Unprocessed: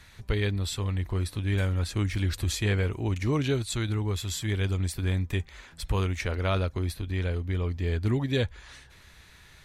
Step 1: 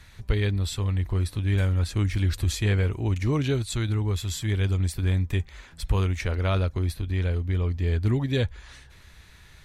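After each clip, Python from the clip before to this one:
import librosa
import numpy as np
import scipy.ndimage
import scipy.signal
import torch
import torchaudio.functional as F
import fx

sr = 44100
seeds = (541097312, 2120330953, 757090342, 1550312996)

y = fx.low_shelf(x, sr, hz=130.0, db=6.0)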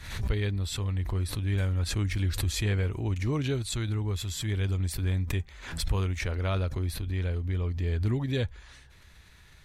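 y = fx.pre_swell(x, sr, db_per_s=73.0)
y = F.gain(torch.from_numpy(y), -4.5).numpy()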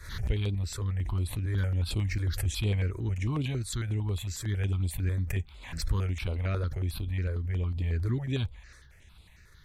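y = fx.phaser_held(x, sr, hz=11.0, low_hz=780.0, high_hz=6000.0)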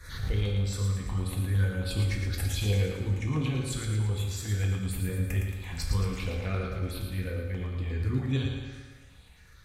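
y = fx.echo_feedback(x, sr, ms=112, feedback_pct=55, wet_db=-5.5)
y = fx.rev_fdn(y, sr, rt60_s=0.85, lf_ratio=0.8, hf_ratio=0.85, size_ms=12.0, drr_db=0.5)
y = F.gain(torch.from_numpy(y), -2.0).numpy()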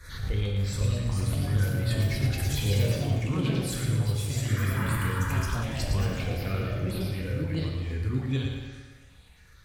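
y = fx.spec_paint(x, sr, seeds[0], shape='noise', start_s=4.76, length_s=0.88, low_hz=840.0, high_hz=1700.0, level_db=-38.0)
y = fx.echo_pitch(y, sr, ms=557, semitones=3, count=2, db_per_echo=-3.0)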